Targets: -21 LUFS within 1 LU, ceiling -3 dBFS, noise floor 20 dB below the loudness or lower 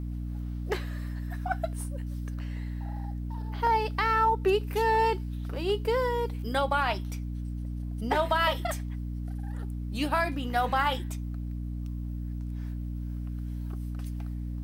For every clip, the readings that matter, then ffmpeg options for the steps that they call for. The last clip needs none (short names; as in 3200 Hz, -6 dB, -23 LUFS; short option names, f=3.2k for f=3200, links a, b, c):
hum 60 Hz; harmonics up to 300 Hz; hum level -32 dBFS; loudness -30.5 LUFS; peak -14.5 dBFS; loudness target -21.0 LUFS
-> -af "bandreject=f=60:t=h:w=4,bandreject=f=120:t=h:w=4,bandreject=f=180:t=h:w=4,bandreject=f=240:t=h:w=4,bandreject=f=300:t=h:w=4"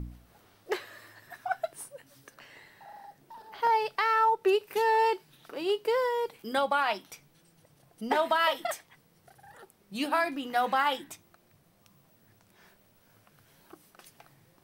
hum none; loudness -28.5 LUFS; peak -13.5 dBFS; loudness target -21.0 LUFS
-> -af "volume=7.5dB"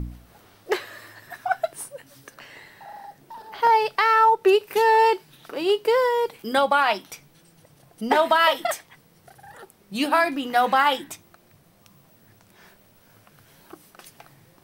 loudness -21.0 LUFS; peak -6.0 dBFS; noise floor -57 dBFS